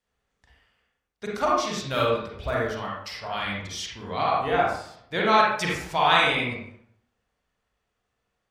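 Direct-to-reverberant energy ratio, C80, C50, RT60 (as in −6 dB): −4.5 dB, 4.5 dB, −0.5 dB, 0.70 s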